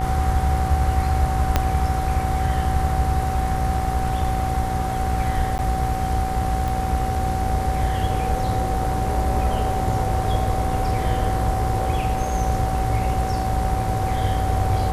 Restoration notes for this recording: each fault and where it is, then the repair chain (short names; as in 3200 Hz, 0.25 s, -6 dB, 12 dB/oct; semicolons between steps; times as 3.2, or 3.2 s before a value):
buzz 60 Hz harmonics 37 -26 dBFS
tone 760 Hz -25 dBFS
1.56 pop -3 dBFS
5.58–5.59 gap 9.9 ms
6.68 pop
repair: de-click; de-hum 60 Hz, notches 37; notch 760 Hz, Q 30; interpolate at 5.58, 9.9 ms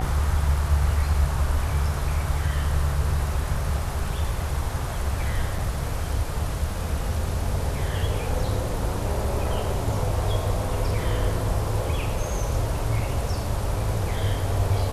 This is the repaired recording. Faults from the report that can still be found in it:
1.56 pop